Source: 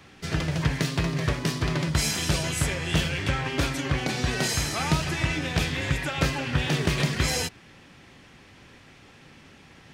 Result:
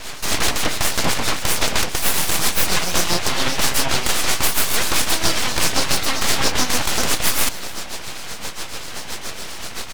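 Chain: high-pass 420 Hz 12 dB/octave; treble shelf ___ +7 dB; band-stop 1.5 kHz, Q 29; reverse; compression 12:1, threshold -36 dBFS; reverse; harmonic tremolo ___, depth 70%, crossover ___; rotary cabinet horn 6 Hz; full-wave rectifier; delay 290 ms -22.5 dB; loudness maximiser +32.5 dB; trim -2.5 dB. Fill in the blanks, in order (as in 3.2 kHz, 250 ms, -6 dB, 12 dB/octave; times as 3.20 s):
3.4 kHz, 7.5 Hz, 990 Hz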